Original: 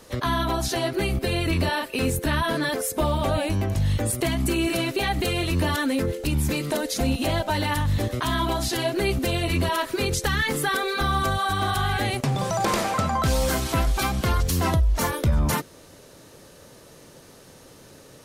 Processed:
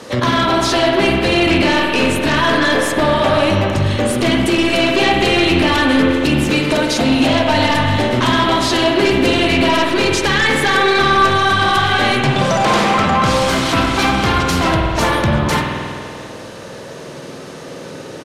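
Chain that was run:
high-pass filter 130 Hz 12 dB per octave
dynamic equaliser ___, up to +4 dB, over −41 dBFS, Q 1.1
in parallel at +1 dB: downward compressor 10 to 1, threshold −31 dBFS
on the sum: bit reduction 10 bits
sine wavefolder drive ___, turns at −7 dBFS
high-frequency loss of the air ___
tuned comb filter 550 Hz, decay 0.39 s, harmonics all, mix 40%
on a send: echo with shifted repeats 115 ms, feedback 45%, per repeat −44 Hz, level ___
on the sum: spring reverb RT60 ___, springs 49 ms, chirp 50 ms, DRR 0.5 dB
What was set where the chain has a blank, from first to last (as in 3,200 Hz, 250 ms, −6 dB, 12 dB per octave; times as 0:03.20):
3,100 Hz, 9 dB, 61 metres, −21 dB, 2.3 s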